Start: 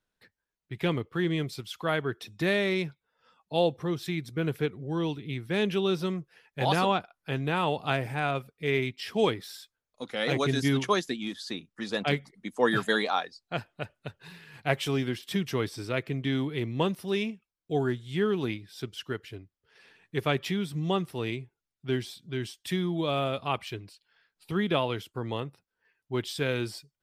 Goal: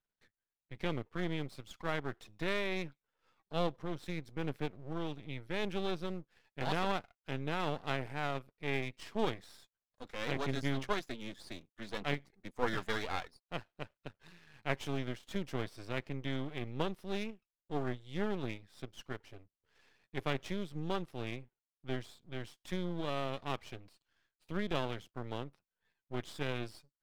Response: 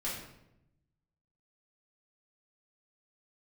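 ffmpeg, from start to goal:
-af "highshelf=f=6.7k:g=-11,aeval=exprs='max(val(0),0)':c=same,volume=-5.5dB"

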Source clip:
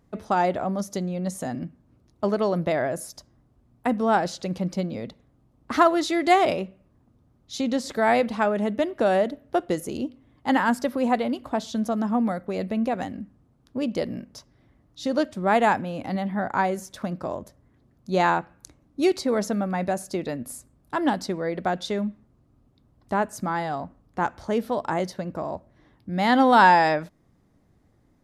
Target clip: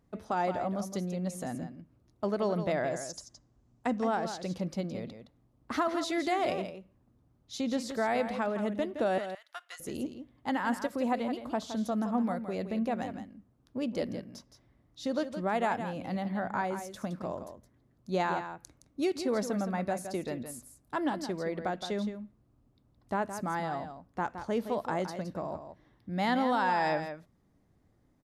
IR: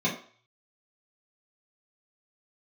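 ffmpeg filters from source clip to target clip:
-filter_complex "[0:a]asettb=1/sr,asplit=3[a][b][c];[a]atrim=end=9.184[d];[b]atrim=start=9.18:end=9.8,asetpts=PTS-STARTPTS,afade=t=in:d=0.004:c=qsin,afade=t=out:st=0.616:d=0.004:c=qsin,highpass=f=1.2k:w=0.5412,highpass=f=1.2k:w=1.3066[e];[c]atrim=start=9.796[f];[d][e]acrossfade=d=0.004:c1=hsin:c2=qsin[g];[g][f]acrossfade=d=0.004:c1=qsin:c2=hsin,alimiter=limit=-13.5dB:level=0:latency=1:release=225,asettb=1/sr,asplit=3[h][i][j];[h]atrim=end=2.764[k];[i]atrim=start=2.76:end=4.07,asetpts=PTS-STARTPTS,afade=t=in:d=0.004:c=qsin,afade=t=out:st=1.306:d=0.004:c=qsin,lowpass=f=6.8k:t=q:w=2.7[l];[j]atrim=start=4.066[m];[k][l]acrossfade=d=0.004:c1=hsin:c2=qsin[n];[n][m]acrossfade=d=0.004:c1=qsin:c2=hsin,aecho=1:1:167:0.335,volume=-6.5dB"

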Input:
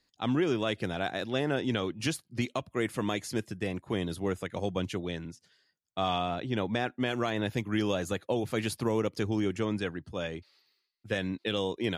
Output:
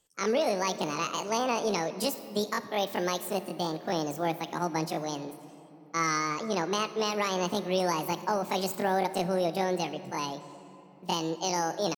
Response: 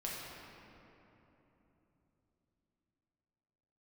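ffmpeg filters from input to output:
-filter_complex "[0:a]asetrate=76340,aresample=44100,atempo=0.577676,asplit=2[a][b];[1:a]atrim=start_sample=2205,highshelf=f=8.6k:g=11[c];[b][c]afir=irnorm=-1:irlink=0,volume=-12dB[d];[a][d]amix=inputs=2:normalize=0"

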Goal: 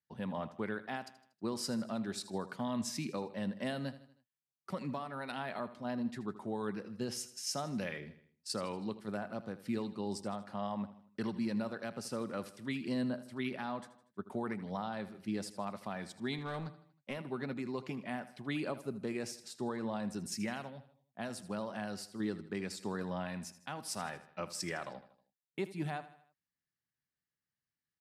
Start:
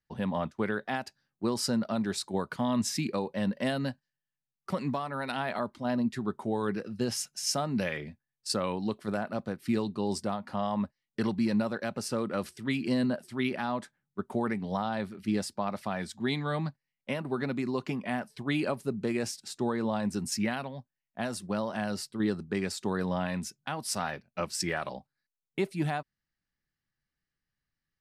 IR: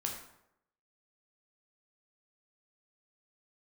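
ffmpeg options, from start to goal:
-filter_complex "[0:a]highpass=86,aecho=1:1:79|158|237|316:0.178|0.0854|0.041|0.0197,asettb=1/sr,asplit=3[a][b][c];[a]atrim=end=16.384[d];[b]atrim=start=16.38:end=17.17,asetpts=PTS-STARTPTS,afade=t=in:d=0.004:c=qsin,afade=t=out:st=0.786:d=0.004:c=qsin,aeval=exprs='clip(val(0),-1,0.0282)':c=same[e];[c]atrim=start=17.166[f];[d][e]acrossfade=d=0.004:c1=hsin:c2=qsin[g];[g][f]acrossfade=d=0.004:c1=qsin:c2=hsin,volume=-7.5dB"

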